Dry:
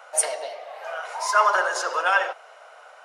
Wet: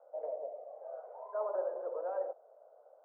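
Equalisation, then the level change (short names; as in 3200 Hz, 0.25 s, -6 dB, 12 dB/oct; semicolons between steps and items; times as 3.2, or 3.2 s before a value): ladder low-pass 630 Hz, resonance 55%; -3.5 dB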